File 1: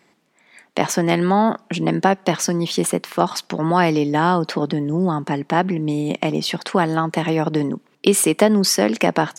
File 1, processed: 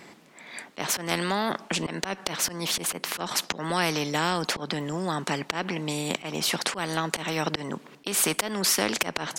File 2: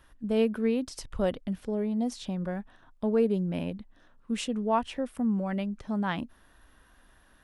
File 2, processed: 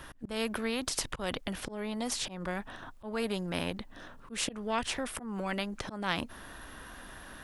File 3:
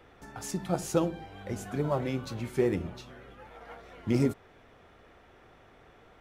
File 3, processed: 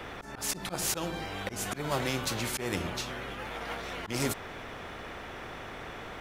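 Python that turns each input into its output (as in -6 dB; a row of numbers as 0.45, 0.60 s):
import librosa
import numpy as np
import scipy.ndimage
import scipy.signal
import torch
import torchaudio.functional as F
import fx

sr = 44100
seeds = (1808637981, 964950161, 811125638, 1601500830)

y = fx.auto_swell(x, sr, attack_ms=211.0)
y = fx.spectral_comp(y, sr, ratio=2.0)
y = y * 10.0 ** (-1.0 / 20.0)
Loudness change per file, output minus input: -8.0, -5.0, -3.0 LU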